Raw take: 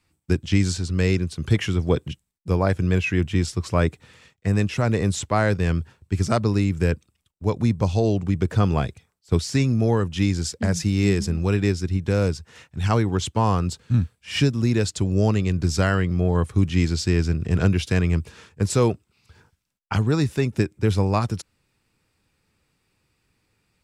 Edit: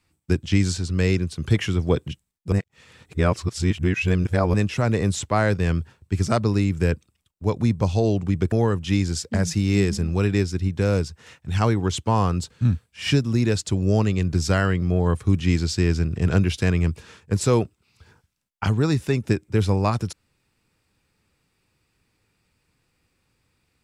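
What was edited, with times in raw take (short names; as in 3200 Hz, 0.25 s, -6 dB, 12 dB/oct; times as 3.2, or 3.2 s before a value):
2.52–4.54 reverse
8.52–9.81 cut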